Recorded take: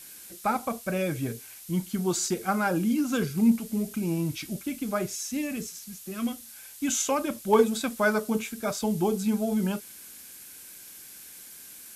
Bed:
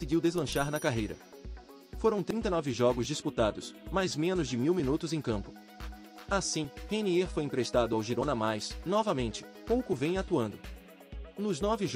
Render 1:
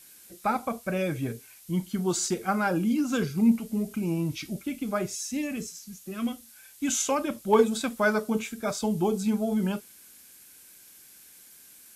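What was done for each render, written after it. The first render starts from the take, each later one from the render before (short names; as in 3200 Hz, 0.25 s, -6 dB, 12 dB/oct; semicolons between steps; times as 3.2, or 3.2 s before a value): noise print and reduce 6 dB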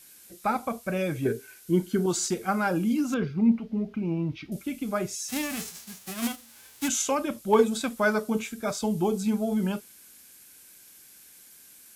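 1.25–2.06 small resonant body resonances 380/1500 Hz, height 14 dB, ringing for 25 ms; 3.14–4.52 air absorption 290 m; 5.28–6.87 spectral whitening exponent 0.3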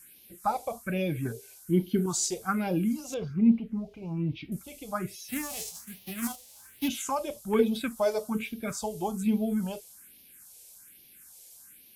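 phaser stages 4, 1.2 Hz, lowest notch 220–1400 Hz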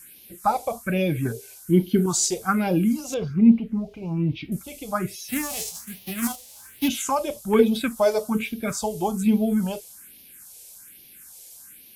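gain +6.5 dB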